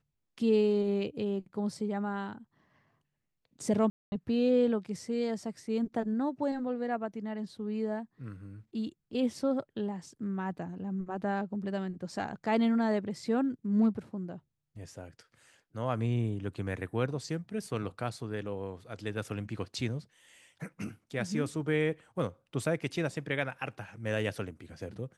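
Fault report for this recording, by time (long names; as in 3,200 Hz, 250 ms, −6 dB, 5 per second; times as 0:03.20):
0:03.90–0:04.12: drop-out 220 ms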